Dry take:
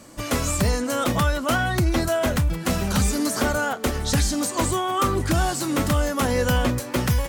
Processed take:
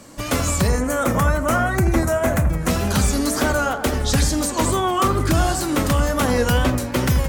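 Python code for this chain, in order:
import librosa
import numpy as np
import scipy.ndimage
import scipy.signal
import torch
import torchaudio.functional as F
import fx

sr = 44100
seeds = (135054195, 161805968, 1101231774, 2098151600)

y = fx.band_shelf(x, sr, hz=3800.0, db=-9.5, octaves=1.1, at=(0.67, 2.68))
y = fx.echo_wet_lowpass(y, sr, ms=84, feedback_pct=48, hz=1500.0, wet_db=-7.5)
y = fx.wow_flutter(y, sr, seeds[0], rate_hz=2.1, depth_cents=64.0)
y = F.gain(torch.from_numpy(y), 2.5).numpy()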